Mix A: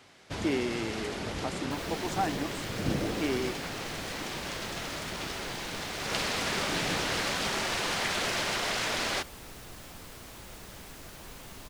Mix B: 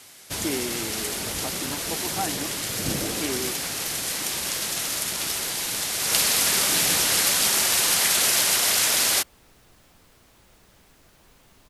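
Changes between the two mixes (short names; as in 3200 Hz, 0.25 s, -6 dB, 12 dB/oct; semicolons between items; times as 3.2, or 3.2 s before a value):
first sound: remove tape spacing loss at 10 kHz 24 dB; second sound -10.0 dB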